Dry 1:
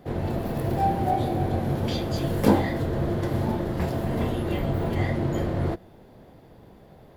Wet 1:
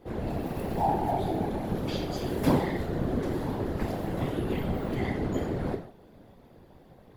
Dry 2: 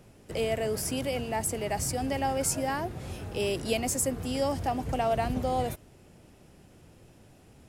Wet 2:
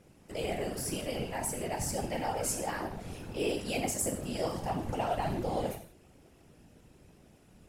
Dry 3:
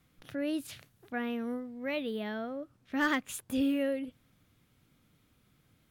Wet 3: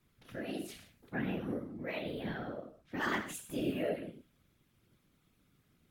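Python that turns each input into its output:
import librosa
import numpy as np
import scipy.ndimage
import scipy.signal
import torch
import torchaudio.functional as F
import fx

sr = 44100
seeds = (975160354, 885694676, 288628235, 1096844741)

y = fx.rev_gated(x, sr, seeds[0], gate_ms=200, shape='falling', drr_db=2.0)
y = fx.whisperise(y, sr, seeds[1])
y = y * librosa.db_to_amplitude(-6.0)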